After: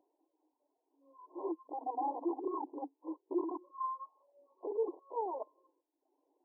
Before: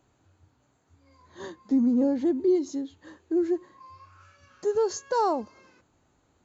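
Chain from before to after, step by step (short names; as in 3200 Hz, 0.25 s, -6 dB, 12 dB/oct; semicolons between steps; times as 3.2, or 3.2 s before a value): block floating point 3-bit; reverb removal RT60 0.78 s; vocal rider 2 s; limiter -23.5 dBFS, peak gain reduction 7 dB; compressor 5:1, threshold -33 dBFS, peak gain reduction 7 dB; wrapped overs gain 40.5 dB; brick-wall FIR band-pass 270–1100 Hz; spectral expander 1.5:1; gain +14.5 dB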